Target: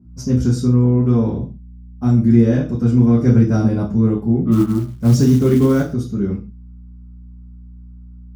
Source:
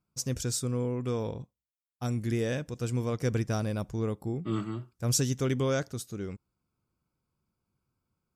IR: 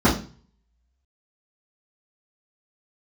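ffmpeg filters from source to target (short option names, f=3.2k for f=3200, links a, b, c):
-filter_complex "[0:a]aeval=exprs='val(0)+0.00141*(sin(2*PI*60*n/s)+sin(2*PI*2*60*n/s)/2+sin(2*PI*3*60*n/s)/3+sin(2*PI*4*60*n/s)/4+sin(2*PI*5*60*n/s)/5)':c=same[a];[1:a]atrim=start_sample=2205,afade=t=out:st=0.21:d=0.01,atrim=end_sample=9702[b];[a][b]afir=irnorm=-1:irlink=0,asplit=3[c][d][e];[c]afade=t=out:st=4.51:d=0.02[f];[d]acrusher=bits=7:mode=log:mix=0:aa=0.000001,afade=t=in:st=4.51:d=0.02,afade=t=out:st=5.92:d=0.02[g];[e]afade=t=in:st=5.92:d=0.02[h];[f][g][h]amix=inputs=3:normalize=0,volume=-13dB"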